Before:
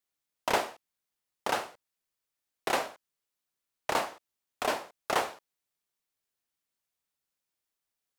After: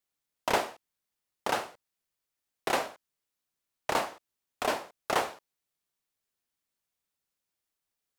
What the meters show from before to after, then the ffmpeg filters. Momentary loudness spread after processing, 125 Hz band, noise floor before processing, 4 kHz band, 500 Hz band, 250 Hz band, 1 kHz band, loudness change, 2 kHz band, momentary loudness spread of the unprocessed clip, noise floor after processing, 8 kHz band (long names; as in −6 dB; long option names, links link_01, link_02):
10 LU, +2.0 dB, below −85 dBFS, 0.0 dB, +0.5 dB, +1.5 dB, +0.5 dB, +0.5 dB, 0.0 dB, 10 LU, below −85 dBFS, 0.0 dB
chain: -af "lowshelf=frequency=330:gain=2.5"